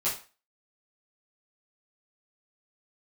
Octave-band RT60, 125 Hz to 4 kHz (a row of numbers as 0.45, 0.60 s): 0.25, 0.30, 0.35, 0.35, 0.35, 0.30 s